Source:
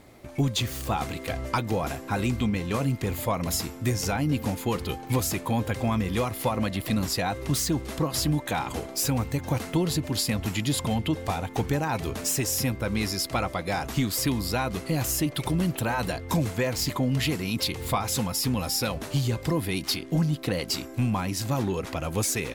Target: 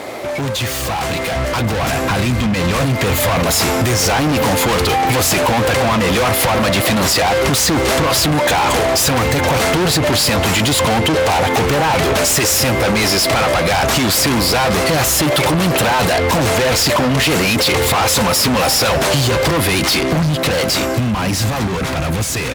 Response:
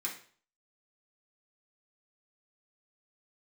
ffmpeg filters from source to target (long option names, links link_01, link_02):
-filter_complex "[0:a]asplit=2[link_01][link_02];[link_02]highpass=frequency=720:poles=1,volume=26dB,asoftclip=type=tanh:threshold=-14dB[link_03];[link_01][link_03]amix=inputs=2:normalize=0,lowpass=frequency=5800:poles=1,volume=-6dB,asplit=2[link_04][link_05];[link_05]alimiter=level_in=2dB:limit=-24dB:level=0:latency=1,volume=-2dB,volume=1.5dB[link_06];[link_04][link_06]amix=inputs=2:normalize=0,equalizer=frequency=540:width_type=o:width=1.3:gain=6.5,volume=18.5dB,asoftclip=hard,volume=-18.5dB,highpass=54,asplit=2[link_07][link_08];[link_08]adelay=209.9,volume=-20dB,highshelf=frequency=4000:gain=-4.72[link_09];[link_07][link_09]amix=inputs=2:normalize=0,dynaudnorm=framelen=240:gausssize=21:maxgain=14dB,asubboost=boost=10.5:cutoff=150,acompressor=threshold=-13dB:ratio=6"